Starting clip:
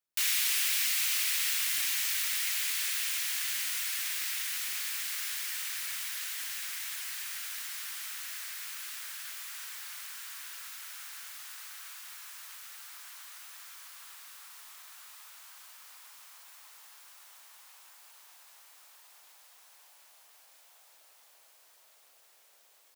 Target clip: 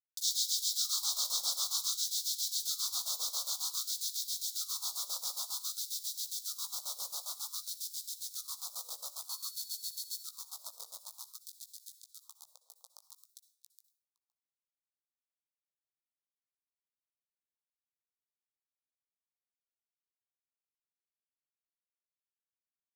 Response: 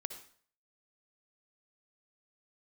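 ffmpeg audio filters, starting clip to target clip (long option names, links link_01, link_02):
-filter_complex "[0:a]asettb=1/sr,asplit=3[link_01][link_02][link_03];[link_01]atrim=end=9.294[link_04];[link_02]atrim=start=9.29:end=10.2,asetpts=PTS-STARTPTS,afade=type=in:duration=0.004:curve=qsin,afade=type=out:start_time=0.906:duration=0.004:curve=qsin,aeval=exprs='val(0)+0.00631*sin(2*PI*4400*n/s)':channel_layout=same[link_05];[link_03]atrim=start=10.196[link_06];[link_04][link_05]acrossfade=duration=0.004:curve1=hsin:curve2=qsin[link_07];[link_07][link_06]acrossfade=duration=0.004:curve1=qsin:curve2=hsin,tremolo=f=7.4:d=0.92,highpass=frequency=240:width=0.5412,highpass=frequency=240:width=1.3066,equalizer=frequency=280:width_type=q:width=4:gain=6,equalizer=frequency=460:width_type=q:width=4:gain=6,equalizer=frequency=1400:width_type=q:width=4:gain=7,lowpass=frequency=6700:width=0.5412,lowpass=frequency=6700:width=1.3066,acrusher=bits=6:mix=0:aa=0.000001,asuperstop=centerf=2100:order=12:qfactor=0.86,asplit=2[link_08][link_09];[link_09]adelay=17,volume=-10dB[link_10];[link_08][link_10]amix=inputs=2:normalize=0,asplit=2[link_11][link_12];[link_12]adelay=513.1,volume=-18dB,highshelf=frequency=4000:gain=-11.5[link_13];[link_11][link_13]amix=inputs=2:normalize=0,asplit=2[link_14][link_15];[1:a]atrim=start_sample=2205,highshelf=frequency=5300:gain=10[link_16];[link_15][link_16]afir=irnorm=-1:irlink=0,volume=-2.5dB[link_17];[link_14][link_17]amix=inputs=2:normalize=0,afftfilt=real='re*gte(b*sr/1024,450*pow(2100/450,0.5+0.5*sin(2*PI*0.53*pts/sr)))':imag='im*gte(b*sr/1024,450*pow(2100/450,0.5+0.5*sin(2*PI*0.53*pts/sr)))':win_size=1024:overlap=0.75"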